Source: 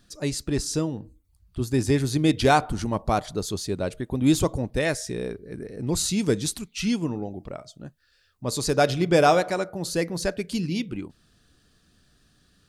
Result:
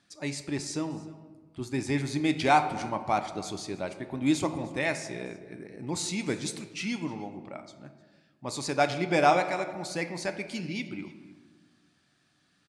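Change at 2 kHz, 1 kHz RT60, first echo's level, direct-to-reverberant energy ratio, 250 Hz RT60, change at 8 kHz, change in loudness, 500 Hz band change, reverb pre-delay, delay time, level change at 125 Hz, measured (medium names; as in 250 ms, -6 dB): -1.5 dB, 1.4 s, -21.0 dB, 8.5 dB, 1.8 s, -7.0 dB, -5.0 dB, -6.5 dB, 3 ms, 305 ms, -9.0 dB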